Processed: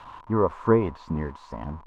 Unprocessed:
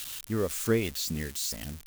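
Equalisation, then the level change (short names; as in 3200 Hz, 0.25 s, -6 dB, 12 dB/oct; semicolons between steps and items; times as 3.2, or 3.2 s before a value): synth low-pass 990 Hz, resonance Q 12; +5.0 dB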